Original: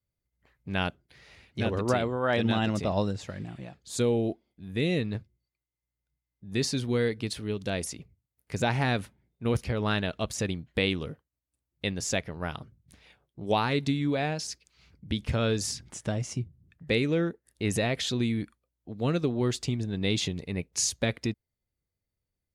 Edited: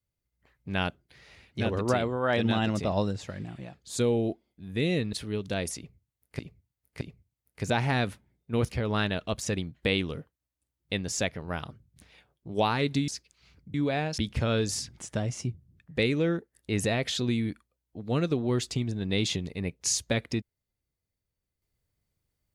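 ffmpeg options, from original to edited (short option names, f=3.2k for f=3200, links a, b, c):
-filter_complex "[0:a]asplit=7[a][b][c][d][e][f][g];[a]atrim=end=5.132[h];[b]atrim=start=7.288:end=8.552[i];[c]atrim=start=7.928:end=8.552[j];[d]atrim=start=7.928:end=14.002[k];[e]atrim=start=14.438:end=15.102[l];[f]atrim=start=13.998:end=14.442[m];[g]atrim=start=15.098[n];[h][i]acrossfade=d=0.004:c1=hsin:c2=hsin[o];[o][j]acrossfade=d=0.004:c1=hsin:c2=hsin[p];[p][k]acrossfade=d=0.004:c1=hsin:c2=hsin[q];[q][l]acrossfade=d=0.004:c1=hsin:c2=hsin[r];[r][m]acrossfade=d=0.004:c1=hsin:c2=hsin[s];[s][n]acrossfade=d=0.004:c1=hsin:c2=hsin"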